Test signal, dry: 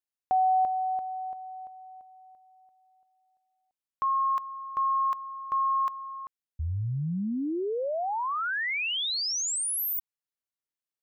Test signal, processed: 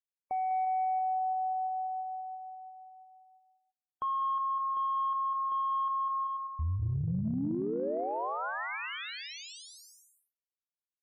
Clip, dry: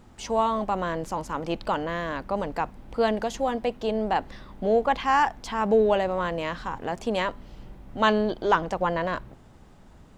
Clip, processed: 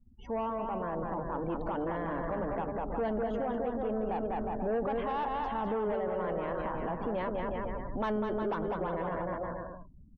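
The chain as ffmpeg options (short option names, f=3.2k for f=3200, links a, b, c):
-af "aemphasis=mode=reproduction:type=75fm,bandreject=f=50:t=h:w=6,bandreject=f=100:t=h:w=6,bandreject=f=150:t=h:w=6,bandreject=f=200:t=h:w=6,asoftclip=type=tanh:threshold=-21.5dB,dynaudnorm=f=140:g=17:m=6dB,aecho=1:1:200|360|488|590.4|672.3:0.631|0.398|0.251|0.158|0.1,afftdn=nr=36:nf=-39,acompressor=threshold=-25dB:ratio=6:attack=0.71:release=167:knee=6:detection=peak,lowpass=f=1.3k:p=1,volume=-2.5dB"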